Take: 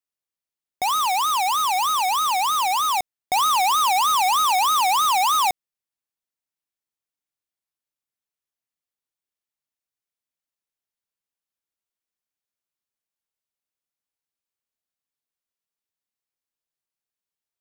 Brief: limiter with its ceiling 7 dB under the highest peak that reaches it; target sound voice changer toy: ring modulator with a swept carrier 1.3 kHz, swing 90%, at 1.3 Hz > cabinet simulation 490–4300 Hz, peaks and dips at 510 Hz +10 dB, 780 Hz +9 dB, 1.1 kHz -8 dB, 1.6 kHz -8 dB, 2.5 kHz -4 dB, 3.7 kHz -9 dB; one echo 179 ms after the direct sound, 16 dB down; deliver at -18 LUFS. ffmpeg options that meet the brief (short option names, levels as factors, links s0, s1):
-af "alimiter=level_in=1.26:limit=0.0631:level=0:latency=1,volume=0.794,aecho=1:1:179:0.158,aeval=exprs='val(0)*sin(2*PI*1300*n/s+1300*0.9/1.3*sin(2*PI*1.3*n/s))':c=same,highpass=490,equalizer=f=510:t=q:w=4:g=10,equalizer=f=780:t=q:w=4:g=9,equalizer=f=1100:t=q:w=4:g=-8,equalizer=f=1600:t=q:w=4:g=-8,equalizer=f=2500:t=q:w=4:g=-4,equalizer=f=3700:t=q:w=4:g=-9,lowpass=f=4300:w=0.5412,lowpass=f=4300:w=1.3066,volume=4.22"